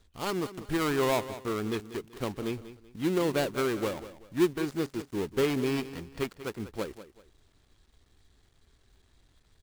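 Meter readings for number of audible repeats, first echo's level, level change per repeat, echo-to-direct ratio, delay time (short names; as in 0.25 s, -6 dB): 2, -14.0 dB, -10.0 dB, -13.5 dB, 0.191 s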